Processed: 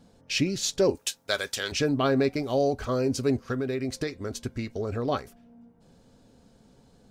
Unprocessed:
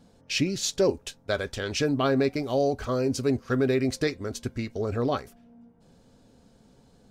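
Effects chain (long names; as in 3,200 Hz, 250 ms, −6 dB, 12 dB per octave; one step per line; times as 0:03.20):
0:00.95–0:01.72: spectral tilt +3.5 dB per octave
0:03.45–0:05.08: downward compressor, threshold −26 dBFS, peak gain reduction 7 dB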